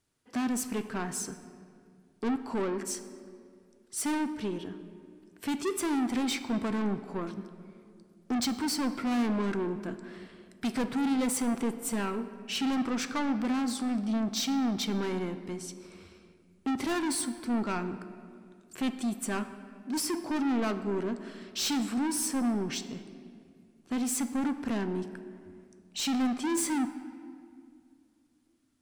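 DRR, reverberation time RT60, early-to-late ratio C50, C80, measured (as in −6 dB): 9.5 dB, 2.3 s, 11.5 dB, 12.5 dB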